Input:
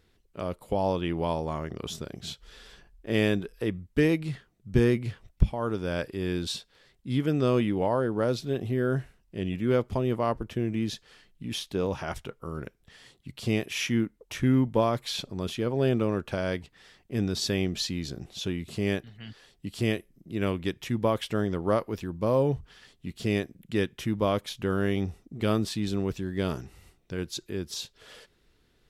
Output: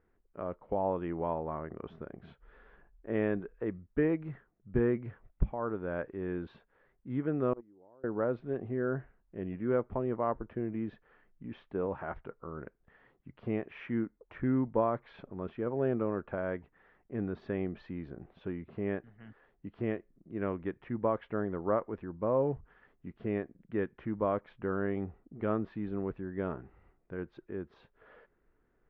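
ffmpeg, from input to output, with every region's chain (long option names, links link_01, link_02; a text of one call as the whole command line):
ffmpeg -i in.wav -filter_complex "[0:a]asettb=1/sr,asplit=3[link_01][link_02][link_03];[link_01]atrim=end=7.534[link_04];[link_02]atrim=start=7.53:end=8.04,asetpts=PTS-STARTPTS,afade=type=in:duration=0.004:curve=qsin,afade=type=out:start_time=0.506:duration=0.004:curve=qsin,lowpass=1300,equalizer=frequency=340:width=1.8:gain=6.5,agate=range=-31dB:threshold=-16dB:ratio=16:release=100:detection=peak[link_05];[link_03]atrim=start=8.036[link_06];[link_04][link_05]acrossfade=duration=0.004:curve1=hsin:curve2=qsin[link_07];[link_07][link_06]acrossfade=duration=0.004:curve1=qsin:curve2=hsin,lowpass=frequency=1700:width=0.5412,lowpass=frequency=1700:width=1.3066,equalizer=frequency=98:width_type=o:width=2.2:gain=-7,volume=-3.5dB" out.wav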